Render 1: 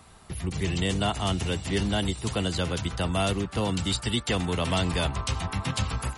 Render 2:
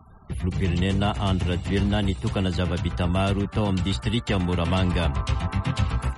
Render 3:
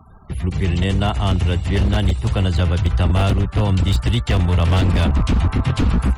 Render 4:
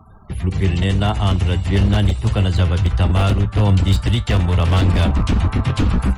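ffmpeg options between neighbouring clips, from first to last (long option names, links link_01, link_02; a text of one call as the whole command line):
ffmpeg -i in.wav -af "afftfilt=real='re*gte(hypot(re,im),0.00355)':imag='im*gte(hypot(re,im),0.00355)':win_size=1024:overlap=0.75,bass=frequency=250:gain=4,treble=frequency=4000:gain=-10,volume=1.5dB" out.wav
ffmpeg -i in.wav -af "asubboost=boost=5:cutoff=100,aeval=exprs='0.2*(abs(mod(val(0)/0.2+3,4)-2)-1)':channel_layout=same,volume=4dB" out.wav
ffmpeg -i in.wav -af "flanger=delay=9.3:depth=1.1:regen=73:speed=0.89:shape=sinusoidal,volume=5dB" out.wav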